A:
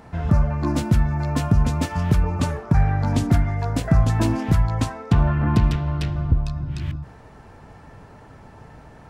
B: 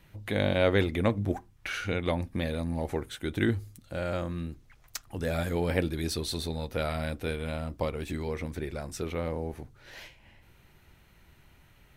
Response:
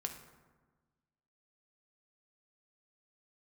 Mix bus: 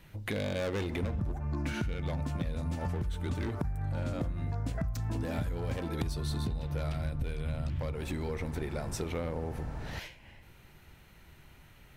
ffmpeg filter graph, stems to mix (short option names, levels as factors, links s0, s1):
-filter_complex "[0:a]lowshelf=f=120:g=11,acompressor=threshold=0.0891:ratio=4,adelay=900,volume=1.06[s0];[1:a]volume=16.8,asoftclip=hard,volume=0.0596,volume=1,asplit=2[s1][s2];[s2]volume=0.422[s3];[2:a]atrim=start_sample=2205[s4];[s3][s4]afir=irnorm=-1:irlink=0[s5];[s0][s1][s5]amix=inputs=3:normalize=0,acompressor=threshold=0.0282:ratio=6"